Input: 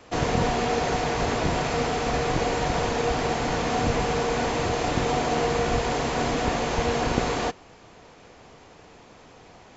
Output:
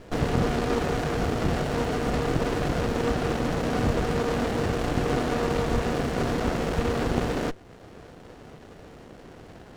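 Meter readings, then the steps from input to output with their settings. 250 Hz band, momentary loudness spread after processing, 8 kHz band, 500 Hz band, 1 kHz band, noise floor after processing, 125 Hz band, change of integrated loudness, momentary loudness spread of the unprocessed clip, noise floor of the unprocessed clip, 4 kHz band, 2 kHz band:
+1.5 dB, 2 LU, can't be measured, −1.5 dB, −5.0 dB, −48 dBFS, +1.5 dB, −1.5 dB, 2 LU, −50 dBFS, −5.0 dB, −3.5 dB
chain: in parallel at −0.5 dB: downward compressor, threshold −39 dBFS, peak gain reduction 20 dB
on the sum: windowed peak hold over 33 samples

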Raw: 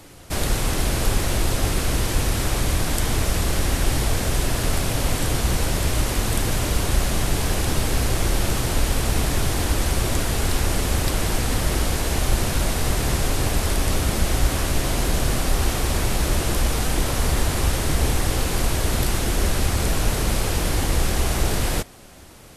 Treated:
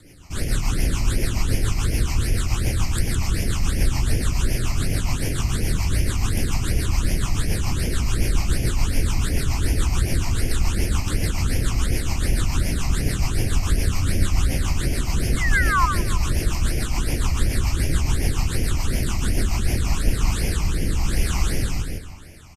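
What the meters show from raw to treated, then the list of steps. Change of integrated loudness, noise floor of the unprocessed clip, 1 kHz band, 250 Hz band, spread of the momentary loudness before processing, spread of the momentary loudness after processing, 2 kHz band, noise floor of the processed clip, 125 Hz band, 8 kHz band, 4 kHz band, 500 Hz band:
−1.0 dB, −26 dBFS, −3.0 dB, −1.0 dB, 1 LU, 2 LU, −0.5 dB, −27 dBFS, +1.0 dB, −4.0 dB, −4.0 dB, −6.0 dB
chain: spring reverb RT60 2.3 s, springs 57 ms, chirp 35 ms, DRR 12.5 dB
rotating-speaker cabinet horn 7 Hz, later 1 Hz, at 0:19.41
sound drawn into the spectrogram fall, 0:15.37–0:15.86, 980–2,200 Hz −20 dBFS
on a send: repeating echo 160 ms, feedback 34%, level −4 dB
on the sum: all-pass phaser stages 8, 2.7 Hz, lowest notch 460–1,200 Hz

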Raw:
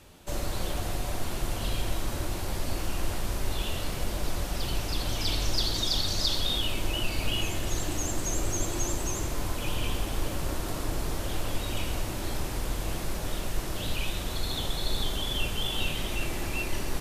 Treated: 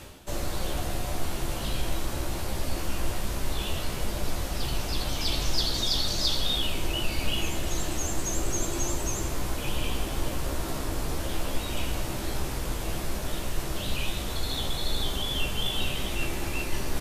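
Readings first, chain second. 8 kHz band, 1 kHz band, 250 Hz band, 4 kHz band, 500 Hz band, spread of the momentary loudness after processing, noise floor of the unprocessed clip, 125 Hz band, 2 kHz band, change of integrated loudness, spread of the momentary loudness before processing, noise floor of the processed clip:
+1.0 dB, +1.0 dB, +1.0 dB, +1.0 dB, +1.0 dB, 7 LU, −34 dBFS, +0.5 dB, +1.0 dB, +1.0 dB, 6 LU, −33 dBFS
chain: reversed playback
upward compression, threshold −29 dBFS
reversed playback
double-tracking delay 15 ms −5.5 dB

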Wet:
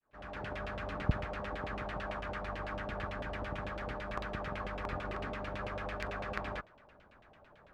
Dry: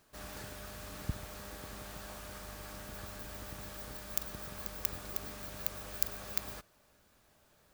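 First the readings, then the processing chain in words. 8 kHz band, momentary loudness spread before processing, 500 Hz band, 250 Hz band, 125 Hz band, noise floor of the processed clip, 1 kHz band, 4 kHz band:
−19.5 dB, 11 LU, +9.0 dB, +6.5 dB, +6.0 dB, −61 dBFS, +9.5 dB, −1.5 dB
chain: fade in at the beginning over 0.57 s
auto-filter low-pass saw down 9 Hz 580–3,000 Hz
level +6 dB

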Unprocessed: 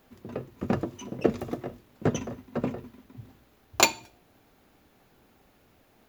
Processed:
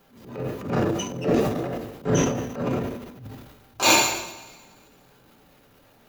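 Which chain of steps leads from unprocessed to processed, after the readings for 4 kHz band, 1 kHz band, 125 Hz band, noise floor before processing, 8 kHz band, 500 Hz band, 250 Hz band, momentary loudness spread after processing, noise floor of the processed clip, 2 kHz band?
+6.5 dB, +6.5 dB, +7.0 dB, −63 dBFS, +6.0 dB, +6.0 dB, +5.5 dB, 23 LU, −57 dBFS, +6.5 dB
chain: coupled-rooms reverb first 0.5 s, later 1.8 s, from −18 dB, DRR −5.5 dB
transient designer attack −10 dB, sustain +10 dB
level −1 dB

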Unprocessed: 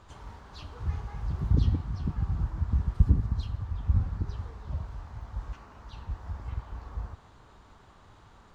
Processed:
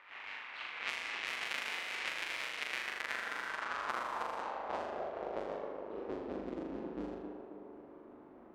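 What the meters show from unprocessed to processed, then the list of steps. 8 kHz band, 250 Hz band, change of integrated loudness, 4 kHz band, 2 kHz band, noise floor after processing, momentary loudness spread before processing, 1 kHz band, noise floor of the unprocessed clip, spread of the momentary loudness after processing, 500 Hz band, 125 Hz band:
can't be measured, −6.5 dB, −8.0 dB, +10.5 dB, +16.5 dB, −55 dBFS, 19 LU, +7.5 dB, −56 dBFS, 12 LU, +9.0 dB, −32.5 dB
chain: each half-wave held at its own peak
parametric band 98 Hz −12.5 dB 1.6 octaves
on a send: flutter between parallel walls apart 6.9 metres, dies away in 0.8 s
on the sum: low-pass that shuts in the quiet parts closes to 1,600 Hz, open at −24.5 dBFS
spectral tilt +2 dB per octave
downward compressor 6 to 1, threshold −33 dBFS, peak gain reduction 15.5 dB
feedback echo with a band-pass in the loop 268 ms, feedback 65%, band-pass 560 Hz, level −4.5 dB
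band-pass filter sweep 2,300 Hz → 300 Hz, 0:02.69–0:06.64
level that may rise only so fast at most 200 dB per second
level +8.5 dB

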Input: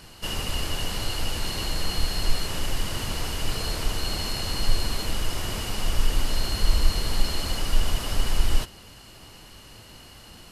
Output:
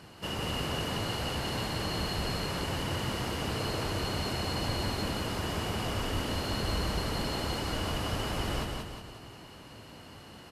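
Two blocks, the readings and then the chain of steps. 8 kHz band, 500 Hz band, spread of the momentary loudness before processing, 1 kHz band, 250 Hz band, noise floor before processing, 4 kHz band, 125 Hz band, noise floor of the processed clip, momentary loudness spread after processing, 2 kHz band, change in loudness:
−8.5 dB, +1.5 dB, 19 LU, +0.5 dB, +1.5 dB, −47 dBFS, −5.0 dB, −2.5 dB, −50 dBFS, 16 LU, −2.0 dB, −4.0 dB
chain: high-pass filter 92 Hz 12 dB per octave
high-shelf EQ 2,800 Hz −11.5 dB
on a send: repeating echo 179 ms, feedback 47%, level −3.5 dB

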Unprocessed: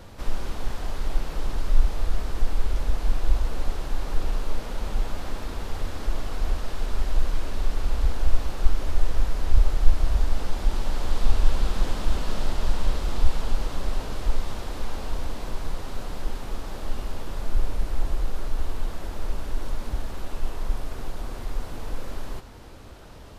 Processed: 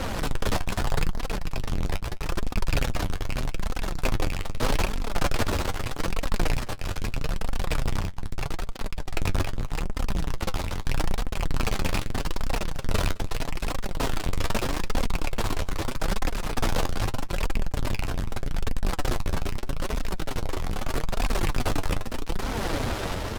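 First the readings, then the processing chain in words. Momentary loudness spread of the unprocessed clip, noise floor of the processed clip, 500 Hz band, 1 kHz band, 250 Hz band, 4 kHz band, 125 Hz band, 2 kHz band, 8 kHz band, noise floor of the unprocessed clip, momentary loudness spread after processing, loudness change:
9 LU, −33 dBFS, +5.0 dB, +5.5 dB, +6.0 dB, +6.0 dB, +1.5 dB, +7.5 dB, can't be measured, −40 dBFS, 5 LU, +1.0 dB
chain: loose part that buzzes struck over −27 dBFS, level −23 dBFS
high-shelf EQ 4,100 Hz −4.5 dB
in parallel at +2 dB: downward compressor, threshold −27 dBFS, peak gain reduction 20.5 dB
on the sum: fuzz pedal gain 39 dB, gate −41 dBFS
flanger 0.8 Hz, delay 3.6 ms, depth 7.8 ms, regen +46%
sample-and-hold tremolo 3.5 Hz
on a send: single-tap delay 212 ms −22.5 dB
on the sum: level −1.5 dB

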